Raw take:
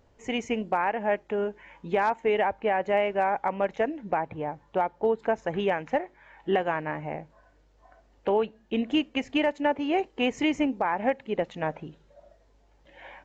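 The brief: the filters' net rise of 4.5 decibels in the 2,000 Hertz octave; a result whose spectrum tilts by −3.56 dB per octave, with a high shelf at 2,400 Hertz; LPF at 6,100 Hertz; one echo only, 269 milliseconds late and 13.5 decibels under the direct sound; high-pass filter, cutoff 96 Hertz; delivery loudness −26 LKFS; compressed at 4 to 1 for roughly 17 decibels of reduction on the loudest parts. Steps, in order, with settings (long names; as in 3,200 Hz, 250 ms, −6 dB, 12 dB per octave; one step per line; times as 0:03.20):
high-pass filter 96 Hz
low-pass filter 6,100 Hz
parametric band 2,000 Hz +8.5 dB
high-shelf EQ 2,400 Hz −6 dB
downward compressor 4 to 1, threshold −41 dBFS
single-tap delay 269 ms −13.5 dB
level +16.5 dB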